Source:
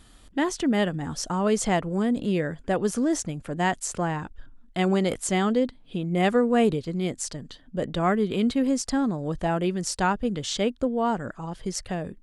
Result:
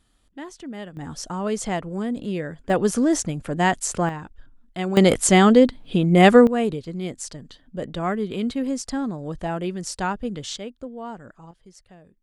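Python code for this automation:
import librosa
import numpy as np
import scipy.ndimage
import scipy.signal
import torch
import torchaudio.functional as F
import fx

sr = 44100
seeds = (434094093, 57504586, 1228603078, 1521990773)

y = fx.gain(x, sr, db=fx.steps((0.0, -12.0), (0.97, -2.5), (2.7, 4.5), (4.09, -3.0), (4.97, 9.5), (6.47, -2.0), (10.56, -10.0), (11.51, -18.5)))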